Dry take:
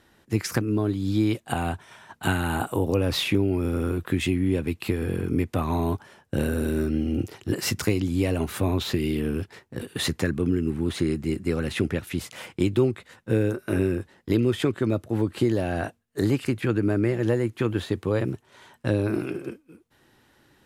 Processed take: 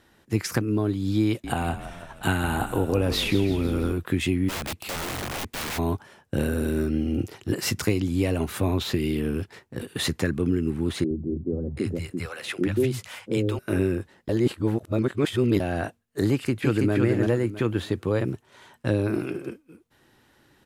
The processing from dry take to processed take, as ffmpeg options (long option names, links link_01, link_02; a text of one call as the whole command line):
ffmpeg -i in.wav -filter_complex "[0:a]asettb=1/sr,asplit=3[link_01][link_02][link_03];[link_01]atrim=end=1.274[link_04];[link_02]atrim=start=1.27:end=3.93,asetpts=PTS-STARTPTS,afade=type=in:duration=0.004:curve=qsin,afade=type=out:start_time=2.656:duration=0.004:curve=qsin,asplit=7[link_05][link_06][link_07][link_08][link_09][link_10][link_11];[link_06]adelay=166,afreqshift=-38,volume=-11.5dB[link_12];[link_07]adelay=332,afreqshift=-76,volume=-16.4dB[link_13];[link_08]adelay=498,afreqshift=-114,volume=-21.3dB[link_14];[link_09]adelay=664,afreqshift=-152,volume=-26.1dB[link_15];[link_10]adelay=830,afreqshift=-190,volume=-31dB[link_16];[link_11]adelay=996,afreqshift=-228,volume=-35.9dB[link_17];[link_05][link_12][link_13][link_14][link_15][link_16][link_17]amix=inputs=7:normalize=0,atrim=end_sample=117306[link_18];[link_03]atrim=start=3.926[link_19];[link_04][link_18]acrossfade=duration=0.004:curve1=hsin:curve2=qsin[link_20];[link_20][link_19]acrossfade=duration=0.004:curve1=qsin:curve2=hsin,asplit=3[link_21][link_22][link_23];[link_21]afade=type=out:start_time=4.48:duration=0.02[link_24];[link_22]aeval=exprs='(mod(21.1*val(0)+1,2)-1)/21.1':channel_layout=same,afade=type=in:start_time=4.48:duration=0.02,afade=type=out:start_time=5.77:duration=0.02[link_25];[link_23]afade=type=in:start_time=5.77:duration=0.02[link_26];[link_24][link_25][link_26]amix=inputs=3:normalize=0,asettb=1/sr,asplit=3[link_27][link_28][link_29];[link_27]atrim=end=11.044[link_30];[link_28]atrim=start=11.04:end=13.59,asetpts=PTS-STARTPTS,afade=type=in:duration=0.004:curve=qsin,afade=type=out:start_time=2.546:duration=0.004:curve=qsin,acrossover=split=160|590[link_31][link_32][link_33];[link_31]adelay=60[link_34];[link_33]adelay=730[link_35];[link_34][link_32][link_35]amix=inputs=3:normalize=0,atrim=end_sample=112455[link_36];[link_29]atrim=start=13.586[link_37];[link_30][link_36]acrossfade=duration=0.004:curve1=hsin:curve2=qsin[link_38];[link_38][link_37]acrossfade=duration=0.004:curve1=qsin:curve2=hsin,asplit=2[link_39][link_40];[link_40]afade=type=in:start_time=16.31:duration=0.01,afade=type=out:start_time=16.93:duration=0.01,aecho=0:1:330|660|990|1320:0.749894|0.187474|0.0468684|0.0117171[link_41];[link_39][link_41]amix=inputs=2:normalize=0,asplit=3[link_42][link_43][link_44];[link_42]atrim=end=14.292[link_45];[link_43]atrim=start=14.288:end=15.602,asetpts=PTS-STARTPTS,areverse[link_46];[link_44]atrim=start=15.598[link_47];[link_45][link_46]acrossfade=duration=0.004:curve1=hsin:curve2=hsin[link_48];[link_48][link_47]acrossfade=duration=0.004:curve1=hsin:curve2=hsin" out.wav